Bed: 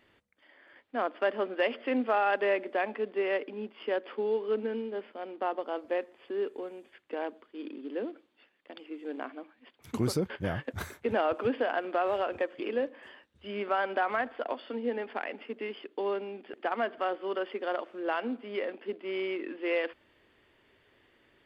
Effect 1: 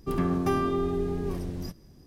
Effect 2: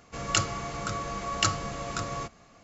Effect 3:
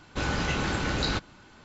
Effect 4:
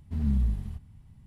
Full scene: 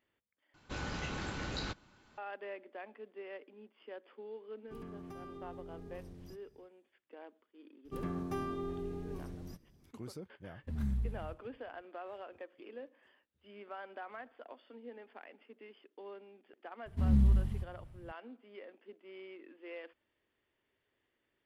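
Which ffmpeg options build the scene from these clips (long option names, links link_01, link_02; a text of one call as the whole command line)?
ffmpeg -i bed.wav -i cue0.wav -i cue1.wav -i cue2.wav -i cue3.wav -filter_complex "[1:a]asplit=2[link_01][link_02];[4:a]asplit=2[link_03][link_04];[0:a]volume=-17dB[link_05];[link_01]acompressor=threshold=-27dB:ratio=6:attack=3.2:release=140:knee=1:detection=peak[link_06];[link_02]bandreject=frequency=4900:width=23[link_07];[link_03]agate=range=-33dB:threshold=-44dB:ratio=3:release=100:detection=peak[link_08];[link_05]asplit=2[link_09][link_10];[link_09]atrim=end=0.544[link_11];[3:a]atrim=end=1.64,asetpts=PTS-STARTPTS,volume=-11.5dB[link_12];[link_10]atrim=start=2.176[link_13];[link_06]atrim=end=2.06,asetpts=PTS-STARTPTS,volume=-17dB,afade=type=in:duration=0.1,afade=type=out:start_time=1.96:duration=0.1,adelay=4640[link_14];[link_07]atrim=end=2.06,asetpts=PTS-STARTPTS,volume=-12dB,afade=type=in:duration=0.004:curve=hsin,afade=type=out:start_time=2.056:duration=0.004:curve=hsin,adelay=7850[link_15];[link_08]atrim=end=1.26,asetpts=PTS-STARTPTS,volume=-9dB,afade=type=in:duration=0.004:curve=hsin,afade=type=out:start_time=1.256:duration=0.004:curve=hsin,adelay=10560[link_16];[link_04]atrim=end=1.26,asetpts=PTS-STARTPTS,volume=-0.5dB,afade=type=in:duration=0.004:curve=hsin,afade=type=out:start_time=1.256:duration=0.004:curve=hsin,adelay=16860[link_17];[link_11][link_12]acrossfade=duration=0.004:curve1=hsin:curve2=hsin[link_18];[link_18][link_13]acrossfade=duration=0.004:curve1=hsin:curve2=hsin[link_19];[link_19][link_14][link_15][link_16][link_17]amix=inputs=5:normalize=0" out.wav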